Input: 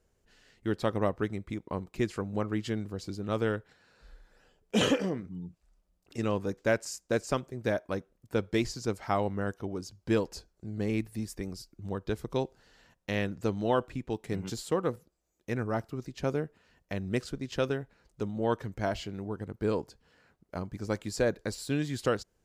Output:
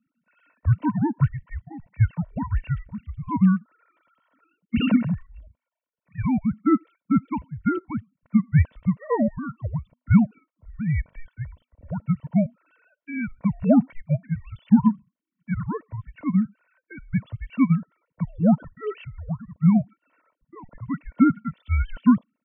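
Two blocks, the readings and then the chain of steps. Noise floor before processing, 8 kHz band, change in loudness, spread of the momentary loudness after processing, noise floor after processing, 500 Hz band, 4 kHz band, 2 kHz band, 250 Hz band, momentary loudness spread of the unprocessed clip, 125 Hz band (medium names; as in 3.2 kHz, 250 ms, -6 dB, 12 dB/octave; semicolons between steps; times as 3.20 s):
-75 dBFS, under -35 dB, +9.0 dB, 15 LU, under -85 dBFS, -3.5 dB, no reading, 0.0 dB, +12.0 dB, 10 LU, +11.5 dB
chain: formants replaced by sine waves; comb 2.4 ms, depth 71%; dynamic bell 620 Hz, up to +5 dB, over -33 dBFS, Q 0.71; frequency shift -250 Hz; harmonic-percussive split harmonic +3 dB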